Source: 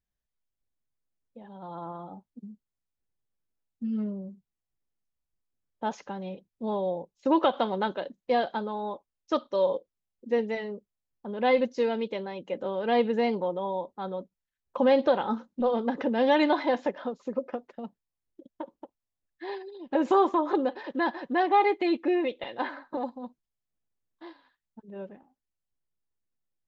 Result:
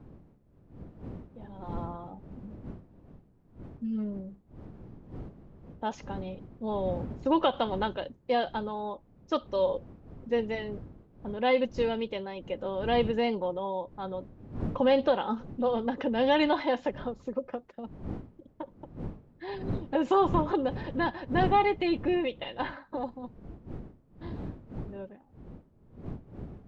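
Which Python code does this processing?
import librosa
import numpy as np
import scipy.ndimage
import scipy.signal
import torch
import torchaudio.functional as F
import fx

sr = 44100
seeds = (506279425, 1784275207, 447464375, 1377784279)

y = fx.dmg_wind(x, sr, seeds[0], corner_hz=220.0, level_db=-40.0)
y = fx.dynamic_eq(y, sr, hz=2900.0, q=4.8, threshold_db=-56.0, ratio=4.0, max_db=6)
y = y * 10.0 ** (-2.0 / 20.0)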